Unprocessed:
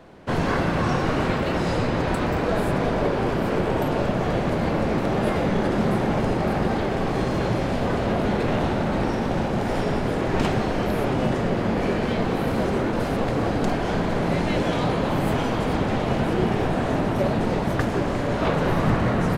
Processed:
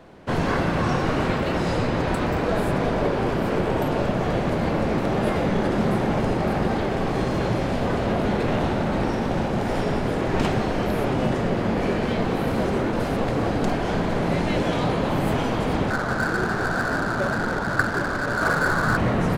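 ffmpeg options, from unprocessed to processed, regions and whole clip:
-filter_complex "[0:a]asettb=1/sr,asplit=3[a][b][c];[a]atrim=end=15.904[d];[b]atrim=start=15.9:end=18.97,asetpts=PTS-STARTPTS,afade=t=in:d=0.004:c=qsin,afade=t=out:st=3.066:d=0.004:c=qsin,lowpass=f=1.5k:t=q:w=9.9,flanger=delay=2.2:depth=8.6:regen=-69:speed=1.8:shape=triangular,adynamicsmooth=sensitivity=5.5:basefreq=600[e];[c]atrim=start=18.966[f];[d][e]acrossfade=d=0.004:c1=hsin:c2=qsin[g];[g][f]acrossfade=d=0.004:c1=qsin:c2=hsin"

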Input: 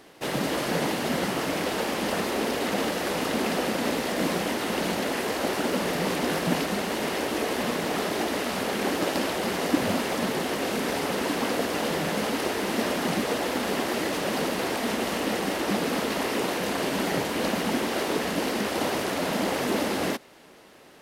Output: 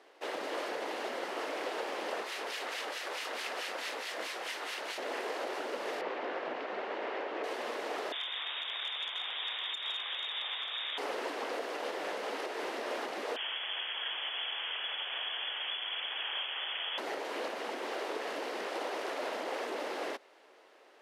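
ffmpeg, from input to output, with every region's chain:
-filter_complex "[0:a]asettb=1/sr,asplit=3[a][b][c];[a]atrim=end=2.234[d];[b]atrim=start=2.23:end=4.98,asetpts=PTS-STARTPTS,afade=t=in:d=0.004:c=qsin,afade=t=out:st=2.746:d=0.004:c=qsin,tiltshelf=f=900:g=-8,acrossover=split=1500[e][f];[e]aeval=exprs='val(0)*(1-0.7/2+0.7/2*cos(2*PI*4.6*n/s))':c=same[g];[f]aeval=exprs='val(0)*(1-0.7/2-0.7/2*cos(2*PI*4.6*n/s))':c=same[h];[g][h]amix=inputs=2:normalize=0[i];[c]atrim=start=4.976[j];[d][i]acrossfade=d=0.004:c1=hsin:c2=qsin[k];[k][j]acrossfade=d=0.004:c1=qsin:c2=hsin,asettb=1/sr,asplit=3[l][m][n];[l]atrim=end=6.014[o];[m]atrim=start=6.01:end=7.44,asetpts=PTS-STARTPTS,afade=t=in:d=0.004:c=qsin,afade=t=out:st=1.426:d=0.004:c=qsin,lowpass=2.7k,bandreject=f=60:t=h:w=6,bandreject=f=120:t=h:w=6,bandreject=f=180:t=h:w=6,bandreject=f=240:t=h:w=6,bandreject=f=300:t=h:w=6,bandreject=f=360:t=h:w=6,bandreject=f=420:t=h:w=6,bandreject=f=480:t=h:w=6[p];[n]atrim=start=7.436[q];[o][p]acrossfade=d=0.004:c1=hsin:c2=qsin[r];[r][q]acrossfade=d=0.004:c1=qsin:c2=hsin,asettb=1/sr,asplit=3[s][t][u];[s]atrim=end=8.124[v];[t]atrim=start=8.12:end=10.98,asetpts=PTS-STARTPTS,afade=t=in:d=0.004:c=qsin,afade=t=out:st=2.856:d=0.004:c=qsin,lowpass=f=3.3k:t=q:w=0.5098,lowpass=f=3.3k:t=q:w=0.6013,lowpass=f=3.3k:t=q:w=0.9,lowpass=f=3.3k:t=q:w=2.563,afreqshift=-3900,aeval=exprs='clip(val(0),-1,0.1)':c=same[w];[u]atrim=start=10.976[x];[v][w]acrossfade=d=0.004:c1=hsin:c2=qsin[y];[y][x]acrossfade=d=0.004:c1=qsin:c2=hsin,asettb=1/sr,asplit=3[z][aa][ab];[z]atrim=end=13.364[ac];[aa]atrim=start=13.36:end=16.98,asetpts=PTS-STARTPTS,afade=t=in:d=0.004:c=qsin,afade=t=out:st=3.616:d=0.004:c=qsin,lowpass=f=3.1k:t=q:w=0.5098,lowpass=f=3.1k:t=q:w=0.6013,lowpass=f=3.1k:t=q:w=0.9,lowpass=f=3.1k:t=q:w=2.563,afreqshift=-3600,asplit=2[ad][ae];[ae]adelay=48,volume=-13dB[af];[ad][af]amix=inputs=2:normalize=0,atrim=end_sample=159642[ag];[ab]atrim=start=16.976[ah];[ac][ag]acrossfade=d=0.004:c1=hsin:c2=qsin[ai];[ai][ah]acrossfade=d=0.004:c1=qsin:c2=hsin,alimiter=limit=-18dB:level=0:latency=1:release=157,highpass=f=380:w=0.5412,highpass=f=380:w=1.3066,aemphasis=mode=reproduction:type=50fm,volume=-6.5dB"

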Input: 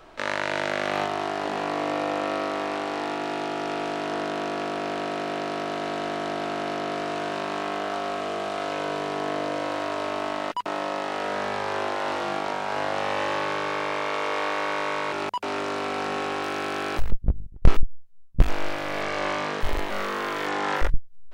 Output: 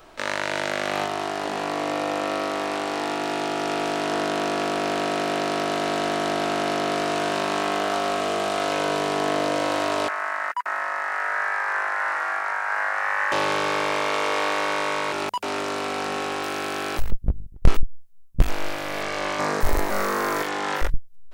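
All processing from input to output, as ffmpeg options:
-filter_complex "[0:a]asettb=1/sr,asplit=3[a][b][c];[a]atrim=end=10.084[d];[b]atrim=start=10.08:end=13.32,asetpts=PTS-STARTPTS,afade=t=in:d=0.004:c=qsin,afade=t=out:st=3.236:d=0.004:c=qsin,highpass=1.2k,highshelf=f=2.4k:t=q:w=3:g=-11[e];[c]atrim=start=13.316[f];[d][e]acrossfade=d=0.004:c1=hsin:c2=qsin[g];[g][f]acrossfade=d=0.004:c1=qsin:c2=hsin,asettb=1/sr,asplit=3[h][i][j];[h]atrim=end=19.394[k];[i]atrim=start=19.39:end=20.43,asetpts=PTS-STARTPTS,afade=t=in:d=0.004:c=qsin,afade=t=out:st=1.036:d=0.004:c=qsin,equalizer=f=3.1k:w=1.8:g=-11,acontrast=45[l];[j]atrim=start=20.426[m];[k][l]acrossfade=d=0.004:c1=hsin:c2=qsin[n];[n][m]acrossfade=d=0.004:c1=qsin:c2=hsin,highshelf=f=6.6k:g=11.5,dynaudnorm=f=380:g=17:m=4.5dB"

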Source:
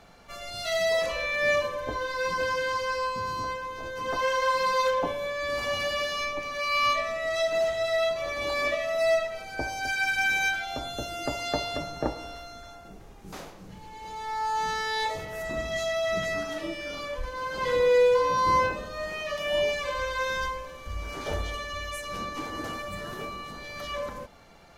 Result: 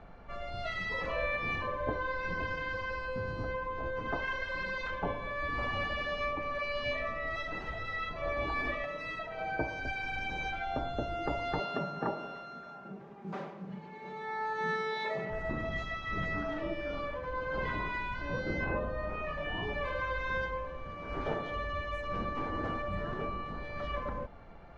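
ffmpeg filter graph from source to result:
-filter_complex "[0:a]asettb=1/sr,asplit=3[a][b][c];[a]atrim=end=8.844[d];[b]atrim=start=8.84:end=9.8,asetpts=PTS-STARTPTS,afade=t=in:d=0.004:c=qsin,afade=t=out:st=0.956:d=0.004:c=qsin,highpass=f=110:p=1,aecho=1:1:6.4:0.45,atrim=end_sample=42336,acompressor=mode=upward:threshold=-28dB:ratio=2.5:attack=3.2:release=140:knee=2.83:detection=peak[e];[c]atrim=start=9.796[f];[d][e]acrossfade=d=0.004:c1=hsin:c2=qsin[g];[g][f]acrossfade=d=0.004:c1=qsin:c2=hsin,asettb=1/sr,asplit=3[h][i][j];[h]atrim=end=11.594[k];[i]atrim=start=11.59:end=15.3,asetpts=PTS-STARTPTS,afade=t=in:d=0.004:c=qsin,afade=t=out:st=3.706:d=0.004:c=qsin,highpass=f=140:w=0.5412,highpass=f=140:w=1.3066,aecho=1:1:5.1:0.69,atrim=end_sample=163611[l];[j]atrim=start=15.296[m];[k][l]acrossfade=d=0.004:c1=hsin:c2=qsin[n];[n][m]acrossfade=d=0.004:c1=qsin:c2=hsin,asettb=1/sr,asplit=3[o][p][q];[o]atrim=end=18.644[r];[p]atrim=start=18.64:end=19.85,asetpts=PTS-STARTPTS,afade=t=in:d=0.004:c=qsin,afade=t=out:st=1.206:d=0.004:c=qsin,highshelf=f=2.7k:g=-9,asplit=2[s][t];[t]adelay=33,volume=-3dB[u];[s][u]amix=inputs=2:normalize=0,atrim=end_sample=53361[v];[q]atrim=start=19.846[w];[r][v]acrossfade=d=0.004:c1=hsin:c2=qsin[x];[x][w]acrossfade=d=0.004:c1=qsin:c2=hsin,lowpass=1.8k,lowshelf=f=82:g=9.5,afftfilt=real='re*lt(hypot(re,im),0.224)':imag='im*lt(hypot(re,im),0.224)':win_size=1024:overlap=0.75"

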